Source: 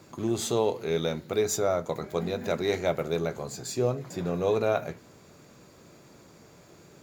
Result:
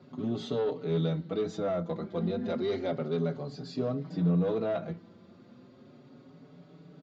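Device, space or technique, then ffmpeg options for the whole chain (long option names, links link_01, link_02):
barber-pole flanger into a guitar amplifier: -filter_complex "[0:a]asplit=2[link_01][link_02];[link_02]adelay=5.1,afreqshift=0.33[link_03];[link_01][link_03]amix=inputs=2:normalize=1,asoftclip=type=tanh:threshold=-24dB,highpass=100,equalizer=frequency=170:width_type=q:width=4:gain=9,equalizer=frequency=260:width_type=q:width=4:gain=9,equalizer=frequency=940:width_type=q:width=4:gain=-4,equalizer=frequency=1700:width_type=q:width=4:gain=-5,equalizer=frequency=2400:width_type=q:width=4:gain=-8,lowpass=frequency=3900:width=0.5412,lowpass=frequency=3900:width=1.3066,asettb=1/sr,asplit=3[link_04][link_05][link_06];[link_04]atrim=end=2.494[link_07];[link_05]atrim=start=2.49:end=4.18,asetpts=PTS-STARTPTS,afade=type=in:duration=0.004:curve=qsin,afade=type=out:start_time=1.686:duration=0.004:curve=qsin,equalizer=frequency=4900:width=2.9:gain=5.5[link_08];[link_06]atrim=start=4.176[link_09];[link_07][link_08]acrossfade=duration=0.004:curve1=hsin:curve2=qsin[link_10];[link_10][link_09]acrossfade=duration=0.004:curve1=qsin:curve2=hsin"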